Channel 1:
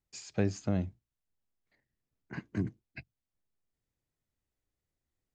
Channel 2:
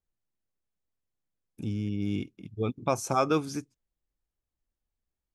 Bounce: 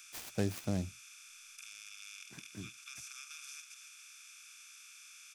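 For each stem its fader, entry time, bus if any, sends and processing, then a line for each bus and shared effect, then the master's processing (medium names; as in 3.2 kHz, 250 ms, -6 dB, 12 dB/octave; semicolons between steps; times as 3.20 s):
1.94 s -4 dB -> 2.38 s -14.5 dB, 0.00 s, no send, no echo send, treble shelf 4.3 kHz +7.5 dB; delay time shaken by noise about 4.8 kHz, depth 0.049 ms
-11.0 dB, 0.00 s, no send, echo send -10 dB, spectral levelling over time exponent 0.2; steep high-pass 1.7 kHz 48 dB/octave; compression 2:1, threshold -38 dBFS, peak gain reduction 5.5 dB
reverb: none
echo: delay 281 ms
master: none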